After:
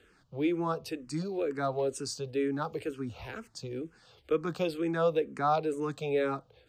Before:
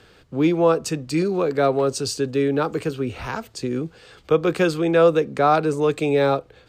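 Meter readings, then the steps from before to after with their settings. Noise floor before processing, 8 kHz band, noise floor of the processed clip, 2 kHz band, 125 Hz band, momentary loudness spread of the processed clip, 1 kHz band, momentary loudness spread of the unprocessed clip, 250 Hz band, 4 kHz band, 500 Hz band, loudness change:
−53 dBFS, −11.0 dB, −65 dBFS, −11.5 dB, −12.0 dB, 12 LU, −10.0 dB, 11 LU, −11.0 dB, −11.5 dB, −12.0 dB, −11.0 dB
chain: frequency shifter mixed with the dry sound −2.1 Hz
level −8.5 dB

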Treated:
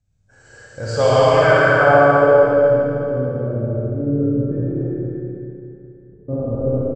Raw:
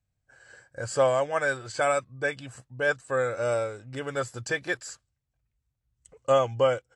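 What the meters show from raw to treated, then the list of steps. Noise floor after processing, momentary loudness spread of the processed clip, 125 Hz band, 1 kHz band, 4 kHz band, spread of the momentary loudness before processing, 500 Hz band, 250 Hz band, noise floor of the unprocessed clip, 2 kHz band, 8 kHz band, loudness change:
−51 dBFS, 16 LU, +17.0 dB, +11.5 dB, +7.5 dB, 14 LU, +11.5 dB, +18.5 dB, −81 dBFS, +9.5 dB, can't be measured, +11.0 dB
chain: feedback delay that plays each chunk backwards 111 ms, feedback 62%, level −3 dB
low-shelf EQ 500 Hz +11.5 dB
low-pass filter sweep 6,700 Hz → 250 Hz, 0:00.73–0:02.82
reverse bouncing-ball delay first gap 70 ms, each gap 1.1×, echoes 5
dynamic equaliser 220 Hz, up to −4 dB, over −30 dBFS, Q 0.96
four-comb reverb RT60 2.8 s, combs from 28 ms, DRR −4.5 dB
level −1.5 dB

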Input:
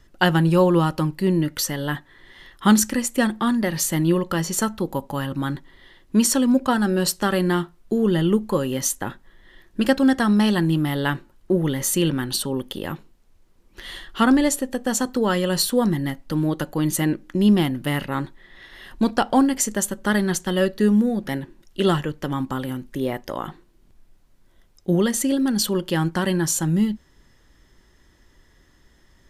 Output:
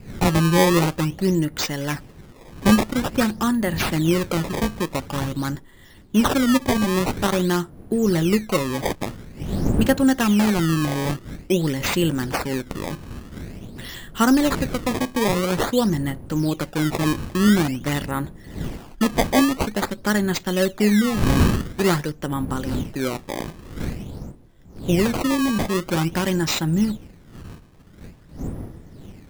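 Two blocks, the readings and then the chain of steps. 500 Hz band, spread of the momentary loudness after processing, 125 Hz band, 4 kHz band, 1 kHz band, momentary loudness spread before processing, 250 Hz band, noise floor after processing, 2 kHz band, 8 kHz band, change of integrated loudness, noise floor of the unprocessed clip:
0.0 dB, 15 LU, +1.5 dB, +0.5 dB, +0.5 dB, 12 LU, 0.0 dB, −47 dBFS, +1.0 dB, −5.0 dB, 0.0 dB, −57 dBFS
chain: wind on the microphone 210 Hz −32 dBFS
sample-and-hold swept by an LFO 18×, swing 160% 0.48 Hz

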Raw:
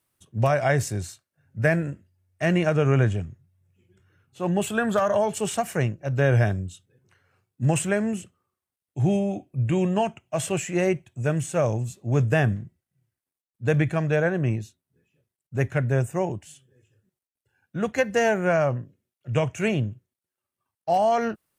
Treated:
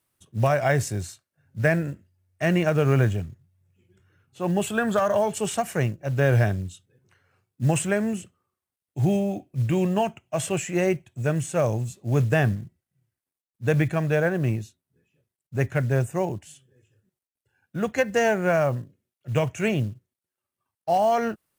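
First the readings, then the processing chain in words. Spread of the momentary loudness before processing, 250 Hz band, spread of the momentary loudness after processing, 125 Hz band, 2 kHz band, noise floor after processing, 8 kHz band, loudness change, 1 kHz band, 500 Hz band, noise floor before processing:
12 LU, 0.0 dB, 12 LU, 0.0 dB, 0.0 dB, below −85 dBFS, 0.0 dB, 0.0 dB, 0.0 dB, 0.0 dB, below −85 dBFS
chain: floating-point word with a short mantissa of 4 bits

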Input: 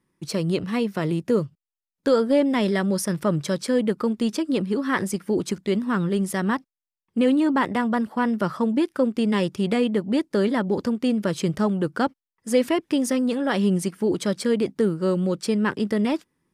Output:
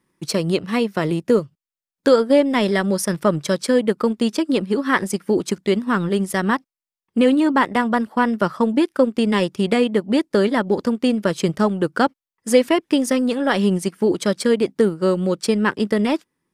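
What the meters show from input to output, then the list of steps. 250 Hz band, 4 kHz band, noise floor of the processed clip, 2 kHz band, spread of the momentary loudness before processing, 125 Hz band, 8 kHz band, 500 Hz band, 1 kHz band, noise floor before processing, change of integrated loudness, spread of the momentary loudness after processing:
+3.0 dB, +5.5 dB, below −85 dBFS, +6.0 dB, 4 LU, +1.5 dB, +4.0 dB, +5.0 dB, +5.5 dB, below −85 dBFS, +4.0 dB, 5 LU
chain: low-shelf EQ 220 Hz −6 dB
transient designer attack +2 dB, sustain −6 dB
level +5.5 dB

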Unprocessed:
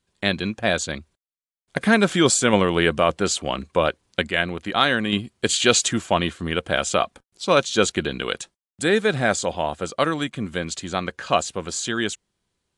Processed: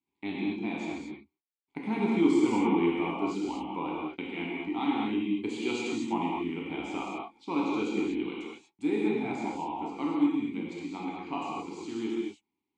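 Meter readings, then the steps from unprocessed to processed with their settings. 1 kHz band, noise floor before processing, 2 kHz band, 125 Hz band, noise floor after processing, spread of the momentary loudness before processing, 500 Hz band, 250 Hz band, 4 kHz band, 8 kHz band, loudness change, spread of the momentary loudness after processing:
−9.5 dB, below −85 dBFS, −15.5 dB, −13.5 dB, below −85 dBFS, 11 LU, −12.0 dB, −2.5 dB, −19.0 dB, −26.0 dB, −9.0 dB, 13 LU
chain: dynamic equaliser 2,400 Hz, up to −5 dB, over −34 dBFS, Q 0.88
formant filter u
reverb whose tail is shaped and stops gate 270 ms flat, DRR −5 dB

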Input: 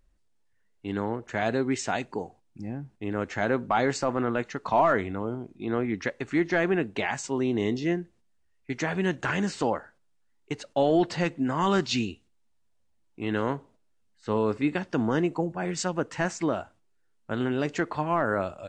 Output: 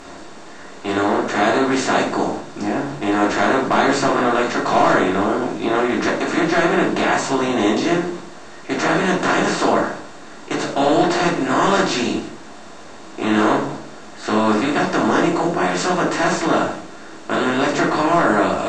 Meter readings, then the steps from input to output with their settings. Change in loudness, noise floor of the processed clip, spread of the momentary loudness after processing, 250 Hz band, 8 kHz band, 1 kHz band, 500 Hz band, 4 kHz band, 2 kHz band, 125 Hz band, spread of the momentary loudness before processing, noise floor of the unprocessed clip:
+10.0 dB, −37 dBFS, 15 LU, +9.5 dB, +10.5 dB, +12.0 dB, +9.5 dB, +12.0 dB, +11.0 dB, +4.5 dB, 11 LU, −67 dBFS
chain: compressor on every frequency bin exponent 0.4
low-shelf EQ 270 Hz −9 dB
rectangular room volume 280 cubic metres, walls furnished, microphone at 3.2 metres
level −2 dB

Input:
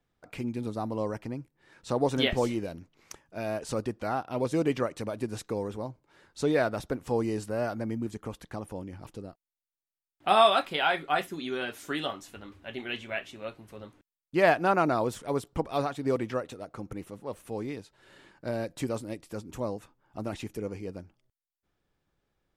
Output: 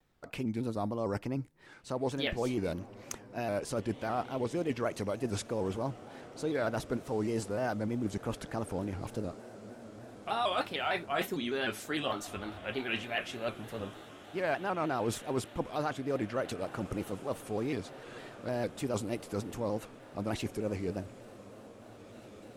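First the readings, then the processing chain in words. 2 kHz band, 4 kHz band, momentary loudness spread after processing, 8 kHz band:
−4.0 dB, −5.0 dB, 14 LU, +1.0 dB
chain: reversed playback
downward compressor 6 to 1, threshold −35 dBFS, peak gain reduction 18 dB
reversed playback
feedback delay with all-pass diffusion 1,980 ms, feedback 59%, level −16 dB
pitch modulation by a square or saw wave square 3.3 Hz, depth 100 cents
level +5 dB

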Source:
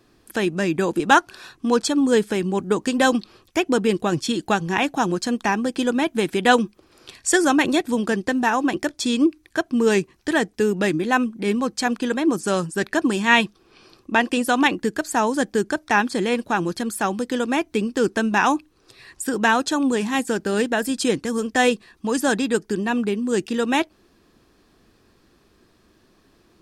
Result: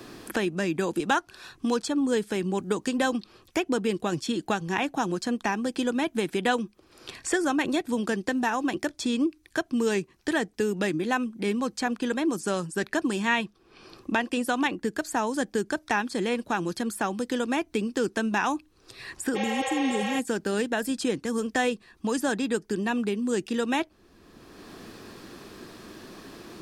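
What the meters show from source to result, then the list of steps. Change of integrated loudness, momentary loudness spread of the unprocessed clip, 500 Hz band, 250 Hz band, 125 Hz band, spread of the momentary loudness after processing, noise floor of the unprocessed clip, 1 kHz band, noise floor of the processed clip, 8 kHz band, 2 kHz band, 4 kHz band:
−6.5 dB, 6 LU, −6.5 dB, −6.0 dB, −6.0 dB, 13 LU, −59 dBFS, −7.5 dB, −61 dBFS, −7.0 dB, −7.0 dB, −7.0 dB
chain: healed spectral selection 0:19.38–0:20.15, 460–6,600 Hz after
multiband upward and downward compressor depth 70%
level −6.5 dB

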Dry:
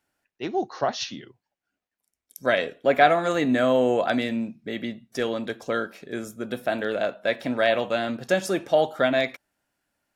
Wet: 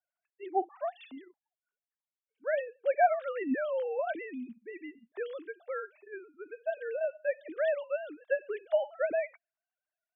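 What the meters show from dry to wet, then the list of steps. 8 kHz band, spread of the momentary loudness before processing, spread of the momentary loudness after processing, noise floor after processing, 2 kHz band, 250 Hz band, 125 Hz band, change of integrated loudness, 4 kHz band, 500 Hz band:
below −35 dB, 13 LU, 15 LU, below −85 dBFS, −11.5 dB, −14.5 dB, below −30 dB, −8.5 dB, below −20 dB, −8.0 dB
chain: three sine waves on the formant tracks
level −9 dB

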